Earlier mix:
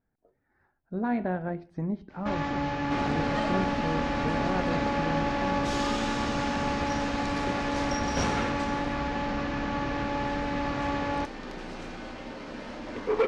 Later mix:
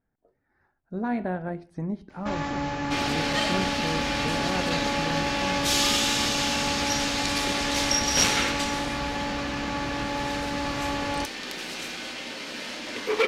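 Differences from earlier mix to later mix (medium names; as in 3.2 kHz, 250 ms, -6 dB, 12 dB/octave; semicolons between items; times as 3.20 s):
second sound: add frequency weighting D; master: remove distance through air 120 m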